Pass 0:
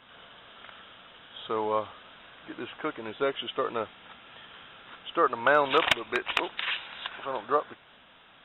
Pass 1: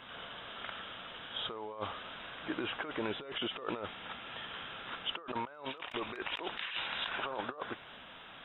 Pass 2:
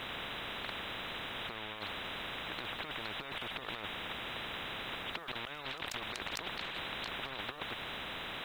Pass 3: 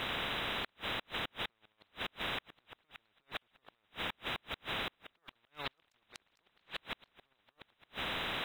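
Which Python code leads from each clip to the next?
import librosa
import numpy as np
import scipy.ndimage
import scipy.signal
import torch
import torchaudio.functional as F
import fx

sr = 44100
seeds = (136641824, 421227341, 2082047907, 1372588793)

y1 = fx.over_compress(x, sr, threshold_db=-38.0, ratio=-1.0)
y1 = F.gain(torch.from_numpy(y1), -2.5).numpy()
y2 = fx.spectral_comp(y1, sr, ratio=10.0)
y2 = F.gain(torch.from_numpy(y2), 1.0).numpy()
y3 = fx.gate_flip(y2, sr, shuts_db=-30.0, range_db=-40)
y3 = F.gain(torch.from_numpy(y3), 4.5).numpy()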